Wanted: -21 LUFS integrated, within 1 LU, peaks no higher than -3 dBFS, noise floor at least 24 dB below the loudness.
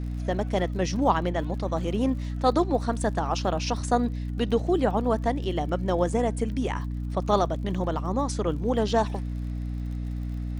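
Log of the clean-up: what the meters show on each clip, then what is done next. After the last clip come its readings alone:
tick rate 50 per s; hum 60 Hz; highest harmonic 300 Hz; hum level -28 dBFS; loudness -27.0 LUFS; peak level -8.0 dBFS; loudness target -21.0 LUFS
-> de-click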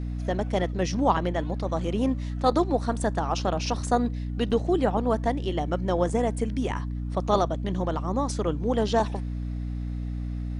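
tick rate 0.19 per s; hum 60 Hz; highest harmonic 300 Hz; hum level -28 dBFS
-> hum notches 60/120/180/240/300 Hz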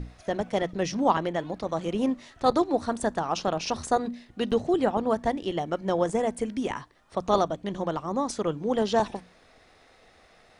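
hum not found; loudness -27.5 LUFS; peak level -8.5 dBFS; loudness target -21.0 LUFS
-> trim +6.5 dB; peak limiter -3 dBFS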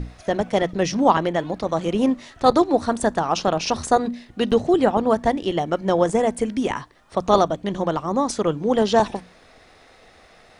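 loudness -21.5 LUFS; peak level -3.0 dBFS; noise floor -52 dBFS

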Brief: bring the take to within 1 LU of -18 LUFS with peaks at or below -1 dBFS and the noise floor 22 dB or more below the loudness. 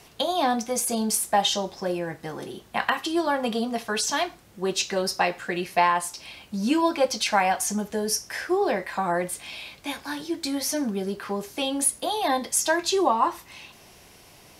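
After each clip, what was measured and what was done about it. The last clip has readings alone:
loudness -25.5 LUFS; peak level -6.5 dBFS; loudness target -18.0 LUFS
-> trim +7.5 dB; peak limiter -1 dBFS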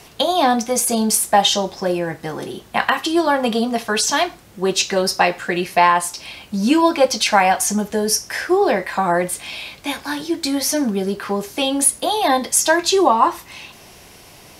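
loudness -18.0 LUFS; peak level -1.0 dBFS; noise floor -44 dBFS

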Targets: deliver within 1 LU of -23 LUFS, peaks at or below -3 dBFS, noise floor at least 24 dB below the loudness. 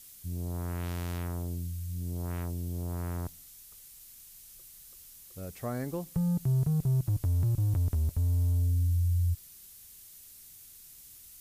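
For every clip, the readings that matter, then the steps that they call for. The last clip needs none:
noise floor -52 dBFS; noise floor target -56 dBFS; loudness -31.5 LUFS; peak level -19.5 dBFS; loudness target -23.0 LUFS
-> noise reduction 6 dB, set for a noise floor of -52 dBFS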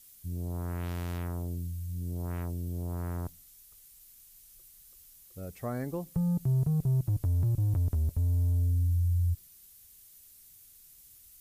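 noise floor -56 dBFS; loudness -31.5 LUFS; peak level -19.5 dBFS; loudness target -23.0 LUFS
-> trim +8.5 dB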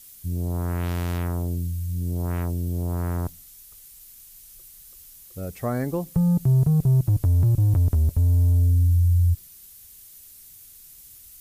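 loudness -23.0 LUFS; peak level -11.0 dBFS; noise floor -48 dBFS

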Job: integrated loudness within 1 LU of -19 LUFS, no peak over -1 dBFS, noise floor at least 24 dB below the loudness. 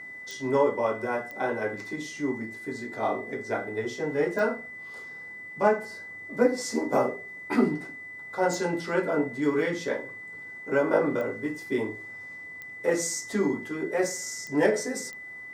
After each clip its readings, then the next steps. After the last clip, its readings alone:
clicks found 8; steady tone 2 kHz; tone level -39 dBFS; loudness -28.5 LUFS; peak level -8.5 dBFS; loudness target -19.0 LUFS
-> de-click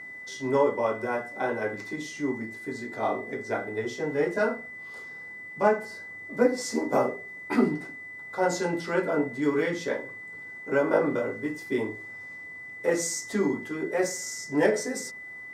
clicks found 0; steady tone 2 kHz; tone level -39 dBFS
-> band-stop 2 kHz, Q 30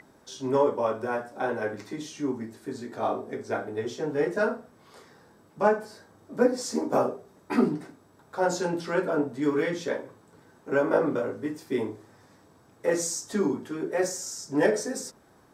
steady tone not found; loudness -28.5 LUFS; peak level -8.5 dBFS; loudness target -19.0 LUFS
-> trim +9.5 dB; peak limiter -1 dBFS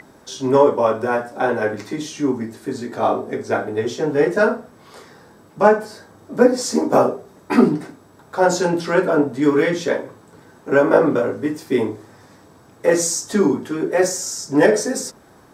loudness -19.0 LUFS; peak level -1.0 dBFS; noise floor -49 dBFS

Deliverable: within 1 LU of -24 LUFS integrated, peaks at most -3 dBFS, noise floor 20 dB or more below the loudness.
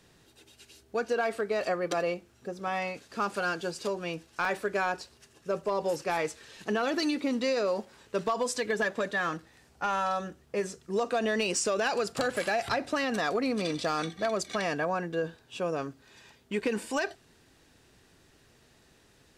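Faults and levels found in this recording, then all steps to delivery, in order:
clipped samples 0.2%; clipping level -20.5 dBFS; dropouts 1; longest dropout 1.7 ms; loudness -31.0 LUFS; peak level -20.5 dBFS; loudness target -24.0 LUFS
-> clip repair -20.5 dBFS; interpolate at 4.45 s, 1.7 ms; trim +7 dB

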